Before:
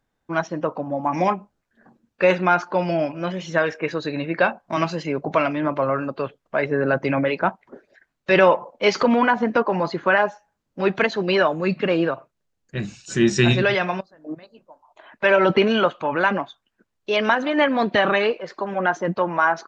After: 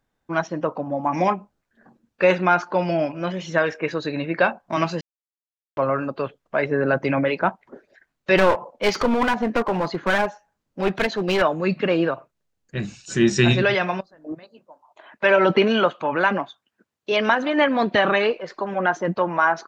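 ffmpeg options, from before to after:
ffmpeg -i in.wav -filter_complex "[0:a]asettb=1/sr,asplit=3[link_01][link_02][link_03];[link_01]atrim=end=8.374[link_04];[link_02]atrim=start=8.37:end=11.42,asetpts=PTS-STARTPTS,afade=type=in:duration=0.004:curve=qsin,afade=type=out:start_time=3.046:duration=0.004:curve=qsin,aeval=exprs='clip(val(0),-1,0.0794)':channel_layout=same[link_05];[link_03]atrim=start=11.416[link_06];[link_04][link_05]acrossfade=duration=0.004:curve1=hsin:curve2=qsin[link_07];[link_07][link_06]acrossfade=duration=0.004:curve1=qsin:curve2=hsin,asettb=1/sr,asplit=3[link_08][link_09][link_10];[link_08]atrim=end=14.324[link_11];[link_09]atrim=start=14.32:end=17.12,asetpts=PTS-STARTPTS,afade=type=in:duration=0.004:curve=qsin,afade=type=out:start_time=2.796:duration=0.004:curve=qsin,highpass=110[link_12];[link_10]atrim=start=17.116[link_13];[link_11][link_12]acrossfade=duration=0.004:curve1=hsin:curve2=qsin[link_14];[link_14][link_13]acrossfade=duration=0.004:curve1=qsin:curve2=hsin,asplit=3[link_15][link_16][link_17];[link_15]atrim=end=5.01,asetpts=PTS-STARTPTS,afade=type=out:start_time=5.006:duration=0.004:curve=hsin[link_18];[link_16]atrim=start=5.01:end=5.77,asetpts=PTS-STARTPTS,volume=0[link_19];[link_17]atrim=start=5.77,asetpts=PTS-STARTPTS,afade=type=in:duration=0.004:curve=hsin[link_20];[link_18][link_19][link_20]concat=n=3:v=0:a=1" out.wav

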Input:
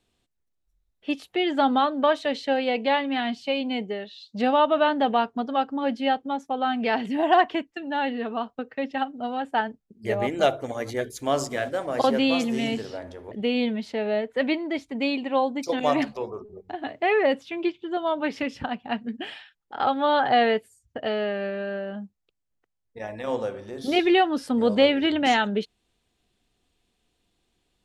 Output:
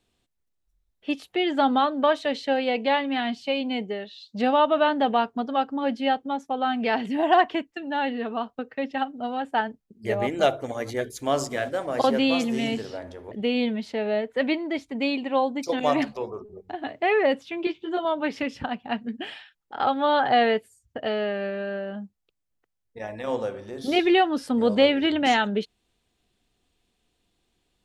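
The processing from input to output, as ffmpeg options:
ffmpeg -i in.wav -filter_complex "[0:a]asettb=1/sr,asplit=3[link_01][link_02][link_03];[link_01]atrim=end=17.654[link_04];[link_02]atrim=start=17.65:end=18.05,asetpts=PTS-STARTPTS,afade=type=in:duration=0.004:curve=qsin,afade=type=out:start_time=0.396:duration=0.004:curve=qsin,asplit=2[link_05][link_06];[link_06]adelay=16,volume=-2dB[link_07];[link_05][link_07]amix=inputs=2:normalize=0,atrim=end_sample=17640[link_08];[link_03]atrim=start=18.046[link_09];[link_04][link_08]acrossfade=duration=0.004:curve1=hsin:curve2=qsin[link_10];[link_10][link_09]acrossfade=duration=0.004:curve1=qsin:curve2=hsin" out.wav

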